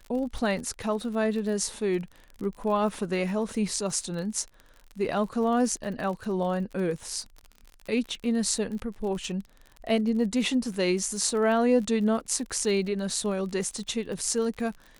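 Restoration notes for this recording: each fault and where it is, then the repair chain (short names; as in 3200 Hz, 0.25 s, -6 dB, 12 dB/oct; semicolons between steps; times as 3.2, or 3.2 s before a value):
crackle 39/s -35 dBFS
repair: de-click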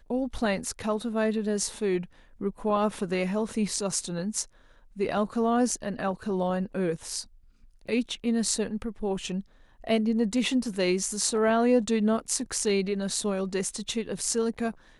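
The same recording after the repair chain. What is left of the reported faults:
none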